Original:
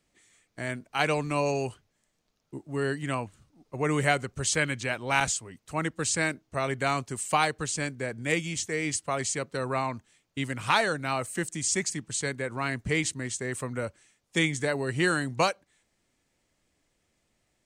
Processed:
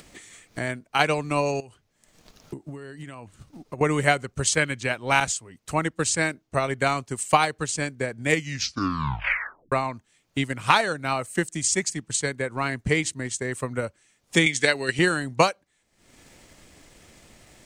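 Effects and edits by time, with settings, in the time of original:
1.60–3.81 s: compression, threshold -40 dBFS
8.30 s: tape stop 1.42 s
14.46–14.99 s: frequency weighting D
whole clip: upward compressor, threshold -37 dBFS; transient shaper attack +6 dB, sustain -4 dB; trim +2 dB

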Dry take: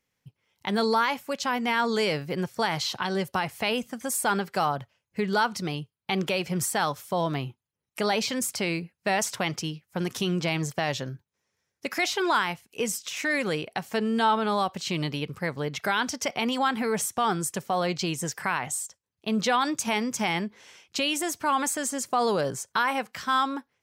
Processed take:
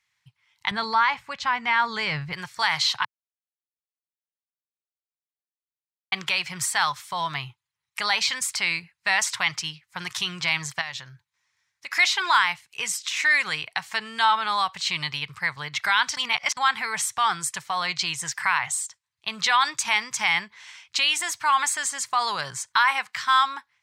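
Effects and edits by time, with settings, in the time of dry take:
0.71–2.33 s: RIAA curve playback
3.05–6.12 s: mute
10.81–11.93 s: compression 2:1, threshold -40 dBFS
16.17–16.57 s: reverse
whole clip: graphic EQ 125/250/500/1000/2000/4000/8000 Hz +6/-12/-9/+12/+12/+11/+9 dB; trim -7.5 dB

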